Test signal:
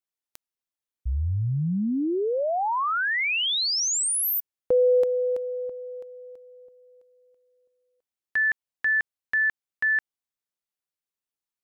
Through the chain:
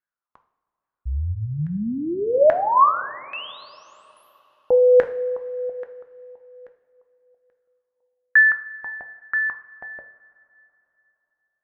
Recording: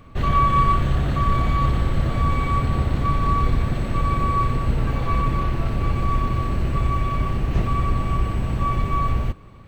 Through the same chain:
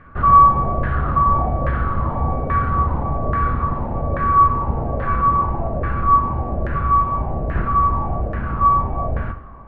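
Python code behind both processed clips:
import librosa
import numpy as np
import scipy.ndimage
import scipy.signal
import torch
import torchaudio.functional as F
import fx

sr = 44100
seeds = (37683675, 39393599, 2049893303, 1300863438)

y = fx.filter_lfo_lowpass(x, sr, shape='saw_down', hz=1.2, low_hz=590.0, high_hz=1700.0, q=6.0)
y = fx.rev_double_slope(y, sr, seeds[0], early_s=0.54, late_s=3.4, knee_db=-17, drr_db=6.5)
y = y * librosa.db_to_amplitude(-1.5)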